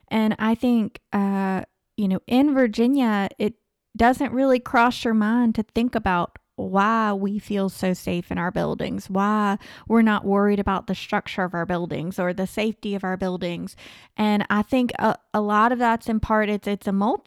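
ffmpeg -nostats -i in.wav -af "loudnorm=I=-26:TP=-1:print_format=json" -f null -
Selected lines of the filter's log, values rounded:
"input_i" : "-22.4",
"input_tp" : "-7.6",
"input_lra" : "3.1",
"input_thresh" : "-32.6",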